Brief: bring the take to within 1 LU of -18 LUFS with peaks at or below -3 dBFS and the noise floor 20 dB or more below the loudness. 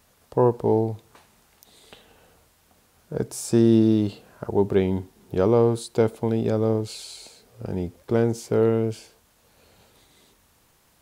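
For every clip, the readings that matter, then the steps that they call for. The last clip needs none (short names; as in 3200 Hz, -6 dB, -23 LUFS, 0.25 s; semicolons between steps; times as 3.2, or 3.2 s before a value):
loudness -23.0 LUFS; peak -6.5 dBFS; loudness target -18.0 LUFS
-> gain +5 dB; limiter -3 dBFS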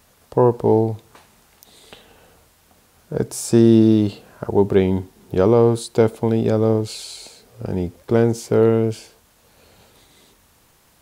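loudness -18.0 LUFS; peak -3.0 dBFS; noise floor -57 dBFS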